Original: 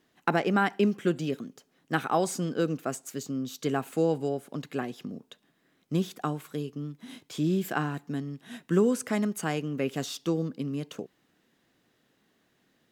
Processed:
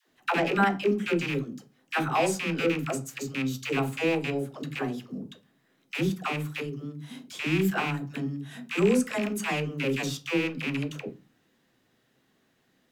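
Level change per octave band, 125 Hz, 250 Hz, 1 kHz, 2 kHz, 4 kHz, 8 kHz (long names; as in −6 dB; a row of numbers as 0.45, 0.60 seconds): +0.5, +0.5, +1.5, +5.5, +5.0, +0.5 decibels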